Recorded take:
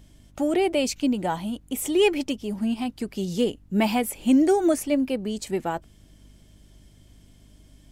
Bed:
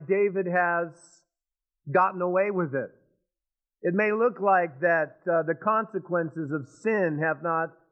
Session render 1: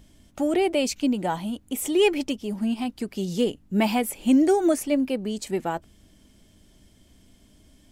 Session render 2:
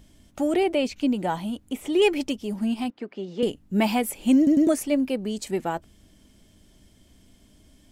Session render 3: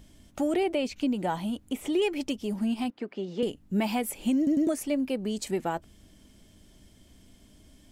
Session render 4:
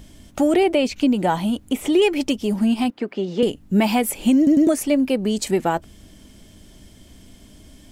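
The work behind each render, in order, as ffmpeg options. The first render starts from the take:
-af "bandreject=f=50:t=h:w=4,bandreject=f=100:t=h:w=4,bandreject=f=150:t=h:w=4"
-filter_complex "[0:a]asettb=1/sr,asplit=3[a][b][c];[a]atrim=end=0.634[d];[b]atrim=start=0.63:end=2.02,asetpts=PTS-STARTPTS,afade=t=in:d=0.004:c=qsin,afade=t=out:st=1.386:d=0.004:c=qsin,acrossover=split=3800[e][f];[f]acompressor=threshold=-46dB:ratio=4:attack=1:release=60[g];[e][g]amix=inputs=2:normalize=0[h];[c]atrim=start=2.016[i];[d][h]acrossfade=d=0.004:c1=hsin:c2=qsin[j];[j][i]acrossfade=d=0.004:c1=qsin:c2=hsin,asettb=1/sr,asplit=3[k][l][m];[k]atrim=end=2.904[n];[l]atrim=start=2.9:end=3.43,asetpts=PTS-STARTPTS,afade=t=in:d=0.004:c=qsin,afade=t=out:st=0.526:d=0.004:c=qsin,highpass=310,lowpass=2.2k[o];[m]atrim=start=3.426[p];[n][o]acrossfade=d=0.004:c1=hsin:c2=qsin[q];[q][p]acrossfade=d=0.004:c1=qsin:c2=hsin,asplit=4[r][s][t][u];[r]atrim=end=4.472[v];[s]atrim=start=4.368:end=4.472[w];[t]atrim=start=4.368:end=4.472[x];[u]atrim=start=4.668[y];[v][w]acrossfade=d=0.004:c1=hsin:c2=hsin[z];[z][x]acrossfade=d=0.004:c1=hsin:c2=hsin[aa];[aa][y]acrossfade=d=0.004:c1=hsin:c2=hsin"
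-af "alimiter=limit=-14.5dB:level=0:latency=1:release=351,acompressor=threshold=-29dB:ratio=1.5"
-af "volume=9.5dB"

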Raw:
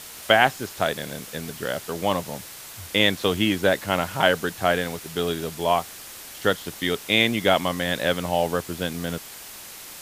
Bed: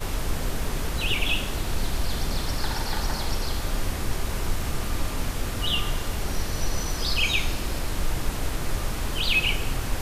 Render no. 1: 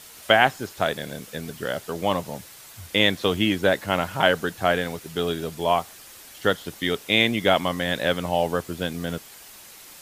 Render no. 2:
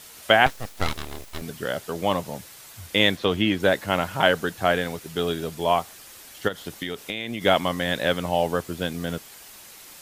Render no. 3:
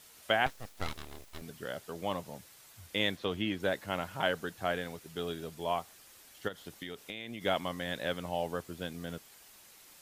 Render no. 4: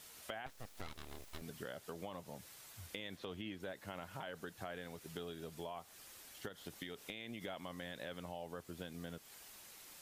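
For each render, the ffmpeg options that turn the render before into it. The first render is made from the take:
-af "afftdn=nr=6:nf=-41"
-filter_complex "[0:a]asettb=1/sr,asplit=3[a][b][c];[a]atrim=end=0.464[d];[b]atrim=start=0.46:end=1.42,asetpts=PTS-STARTPTS,afade=t=in:d=0.004:c=qsin,afade=t=out:st=0.956:d=0.004:c=qsin,aeval=exprs='abs(val(0))':c=same[e];[c]atrim=start=1.416[f];[d][e]acrossfade=d=0.004:c1=hsin:c2=qsin[g];[g][f]acrossfade=d=0.004:c1=qsin:c2=hsin,asettb=1/sr,asplit=3[h][i][j];[h]atrim=end=3.164[k];[i]atrim=start=3.16:end=3.6,asetpts=PTS-STARTPTS,afade=t=in:d=0.004:c=qsin,afade=t=out:st=0.436:d=0.004:c=qsin,acrossover=split=4700[l][m];[m]acompressor=threshold=-48dB:ratio=4:attack=1:release=60[n];[l][n]amix=inputs=2:normalize=0[o];[j]atrim=start=3.596[p];[k][o]acrossfade=d=0.004:c1=hsin:c2=qsin[q];[q][p]acrossfade=d=0.004:c1=qsin:c2=hsin,asplit=3[r][s][t];[r]afade=t=out:st=6.47:d=0.02[u];[s]acompressor=threshold=-25dB:ratio=12:attack=3.2:release=140:knee=1:detection=peak,afade=t=in:st=6.47:d=0.02,afade=t=out:st=7.41:d=0.02[v];[t]afade=t=in:st=7.41:d=0.02[w];[u][v][w]amix=inputs=3:normalize=0"
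-af "volume=-11.5dB"
-af "alimiter=level_in=0.5dB:limit=-24dB:level=0:latency=1:release=36,volume=-0.5dB,acompressor=threshold=-43dB:ratio=6"

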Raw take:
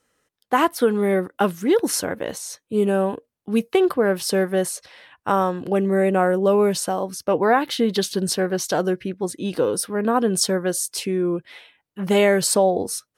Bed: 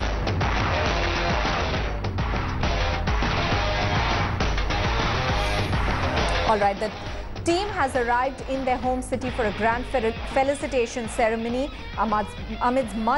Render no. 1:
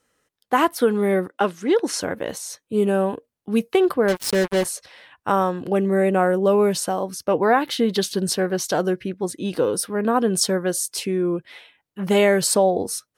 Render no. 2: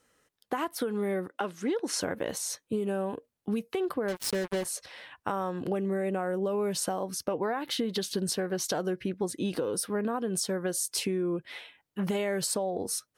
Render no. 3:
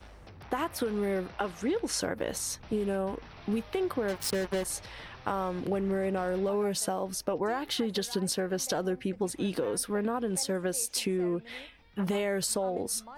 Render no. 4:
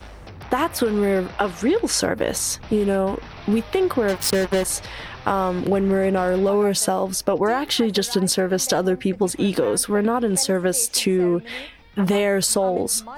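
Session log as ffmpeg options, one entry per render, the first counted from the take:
-filter_complex "[0:a]asettb=1/sr,asplit=3[a][b][c];[a]atrim=end=1.314[d];[b]atrim=start=1.31:end=2.01,asetpts=PTS-STARTPTS,afade=t=in:d=0.004:c=qsin,afade=t=out:st=0.696:d=0.004:c=qsin,highpass=250,lowpass=7.4k[e];[c]atrim=start=2.006[f];[d][e]acrossfade=d=0.004:c1=hsin:c2=qsin[g];[g][f]acrossfade=d=0.004:c1=qsin:c2=hsin,asettb=1/sr,asplit=3[h][i][j];[h]atrim=end=4.084[k];[i]atrim=start=4.08:end=4.65,asetpts=PTS-STARTPTS,afade=t=in:d=0.004:c=qsin,afade=t=out:st=0.566:d=0.004:c=qsin,acrusher=bits=3:mix=0:aa=0.5[l];[j]atrim=start=4.646[m];[k][l]acrossfade=d=0.004:c1=hsin:c2=qsin[n];[n][m]acrossfade=d=0.004:c1=qsin:c2=hsin"
-af "alimiter=limit=-15dB:level=0:latency=1:release=395,acompressor=threshold=-27dB:ratio=6"
-filter_complex "[1:a]volume=-25.5dB[a];[0:a][a]amix=inputs=2:normalize=0"
-af "volume=10.5dB"

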